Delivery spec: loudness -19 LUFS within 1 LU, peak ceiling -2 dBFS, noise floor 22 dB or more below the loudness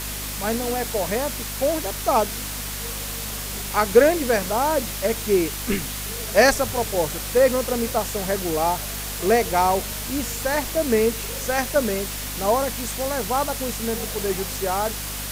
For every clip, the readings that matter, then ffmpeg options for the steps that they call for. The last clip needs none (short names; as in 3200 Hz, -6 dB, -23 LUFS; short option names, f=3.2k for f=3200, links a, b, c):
hum 50 Hz; harmonics up to 250 Hz; hum level -33 dBFS; noise floor -31 dBFS; noise floor target -45 dBFS; loudness -22.5 LUFS; peak -4.0 dBFS; loudness target -19.0 LUFS
-> -af "bandreject=f=50:t=h:w=4,bandreject=f=100:t=h:w=4,bandreject=f=150:t=h:w=4,bandreject=f=200:t=h:w=4,bandreject=f=250:t=h:w=4"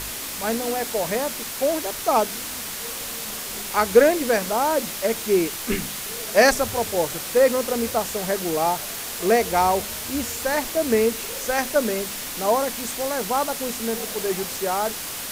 hum none; noise floor -32 dBFS; noise floor target -45 dBFS
-> -af "afftdn=nr=13:nf=-32"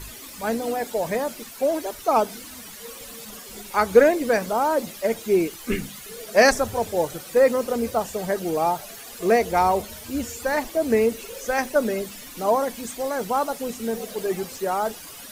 noise floor -41 dBFS; noise floor target -46 dBFS
-> -af "afftdn=nr=6:nf=-41"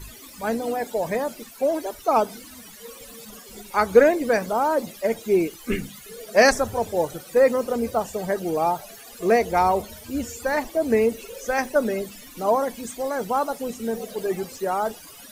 noise floor -44 dBFS; noise floor target -46 dBFS
-> -af "afftdn=nr=6:nf=-44"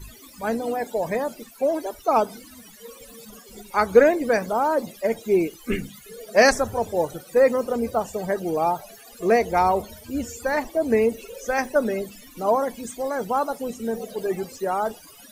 noise floor -47 dBFS; loudness -23.5 LUFS; peak -4.0 dBFS; loudness target -19.0 LUFS
-> -af "volume=4.5dB,alimiter=limit=-2dB:level=0:latency=1"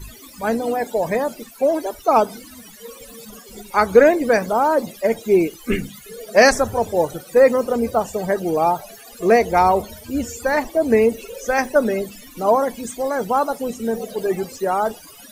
loudness -19.5 LUFS; peak -2.0 dBFS; noise floor -43 dBFS